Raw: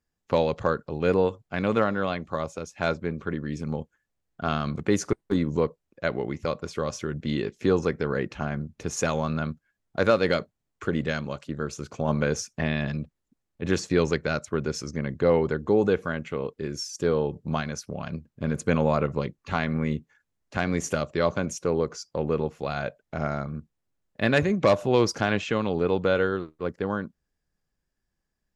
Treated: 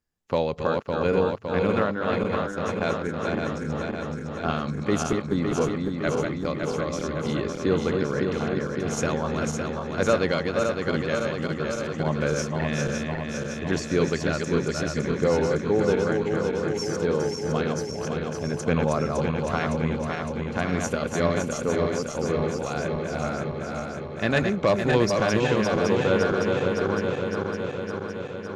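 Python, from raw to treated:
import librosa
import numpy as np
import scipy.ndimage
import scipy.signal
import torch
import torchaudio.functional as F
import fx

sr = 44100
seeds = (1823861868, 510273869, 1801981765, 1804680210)

y = fx.reverse_delay_fb(x, sr, ms=280, feedback_pct=82, wet_db=-4.0)
y = y * librosa.db_to_amplitude(-1.5)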